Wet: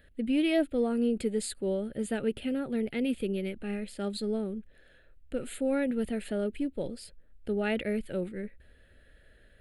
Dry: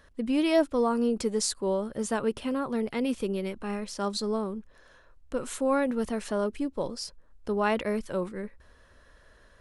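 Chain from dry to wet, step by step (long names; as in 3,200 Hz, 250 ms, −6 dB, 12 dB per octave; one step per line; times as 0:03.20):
phaser with its sweep stopped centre 2,500 Hz, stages 4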